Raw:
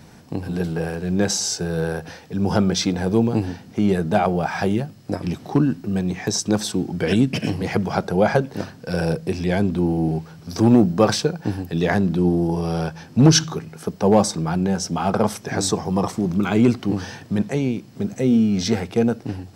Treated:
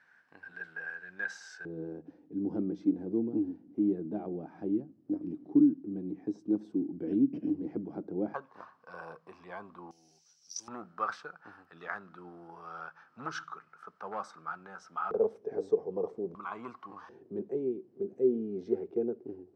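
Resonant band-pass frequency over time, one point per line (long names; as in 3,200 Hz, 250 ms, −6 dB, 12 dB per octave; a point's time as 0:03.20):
resonant band-pass, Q 9
1,600 Hz
from 0:01.65 300 Hz
from 0:08.34 1,100 Hz
from 0:09.91 5,900 Hz
from 0:10.68 1,300 Hz
from 0:15.11 440 Hz
from 0:16.35 1,100 Hz
from 0:17.09 380 Hz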